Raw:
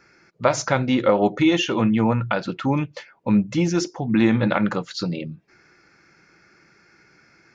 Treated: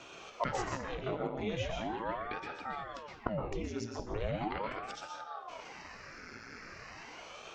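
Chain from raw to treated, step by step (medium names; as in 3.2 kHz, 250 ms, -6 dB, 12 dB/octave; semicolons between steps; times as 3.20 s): de-hum 60.29 Hz, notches 11; inverted gate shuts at -24 dBFS, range -24 dB; reverberation RT60 0.65 s, pre-delay 112 ms, DRR 1 dB; ring modulator with a swept carrier 560 Hz, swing 90%, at 0.39 Hz; trim +7.5 dB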